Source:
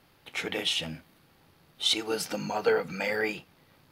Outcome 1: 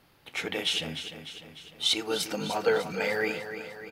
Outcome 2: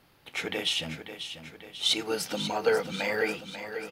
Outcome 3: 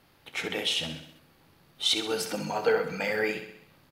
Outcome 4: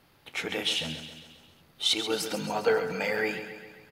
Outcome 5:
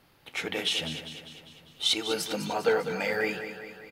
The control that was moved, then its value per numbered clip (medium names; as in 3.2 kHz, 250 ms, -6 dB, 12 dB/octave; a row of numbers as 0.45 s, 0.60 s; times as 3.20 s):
feedback delay, time: 300 ms, 541 ms, 65 ms, 135 ms, 200 ms